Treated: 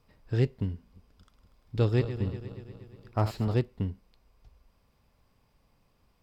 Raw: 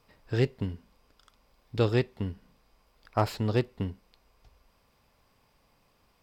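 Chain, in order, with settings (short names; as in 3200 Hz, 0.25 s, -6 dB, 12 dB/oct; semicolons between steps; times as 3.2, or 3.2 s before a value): 0.74–3.54 regenerating reverse delay 0.119 s, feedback 74%, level -11.5 dB; low shelf 270 Hz +9 dB; gain -5.5 dB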